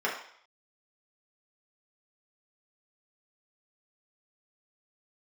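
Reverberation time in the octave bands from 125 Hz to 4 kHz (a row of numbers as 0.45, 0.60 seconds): 0.30, 0.45, 0.60, 0.60, 0.65, 0.65 seconds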